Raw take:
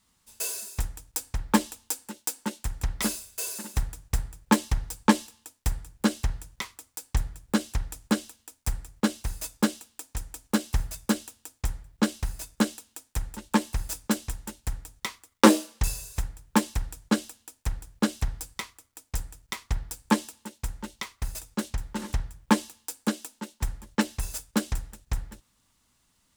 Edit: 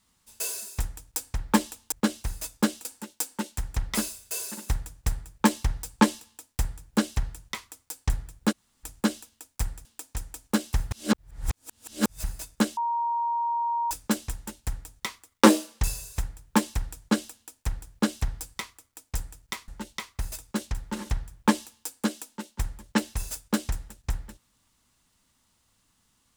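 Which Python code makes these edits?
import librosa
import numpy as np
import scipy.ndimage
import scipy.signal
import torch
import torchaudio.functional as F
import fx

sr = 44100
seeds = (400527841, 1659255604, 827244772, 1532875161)

y = fx.edit(x, sr, fx.room_tone_fill(start_s=7.59, length_s=0.32, crossfade_s=0.02),
    fx.move(start_s=8.92, length_s=0.93, to_s=1.92),
    fx.reverse_span(start_s=10.91, length_s=1.33),
    fx.bleep(start_s=12.77, length_s=1.14, hz=938.0, db=-24.0),
    fx.cut(start_s=19.68, length_s=1.03), tone=tone)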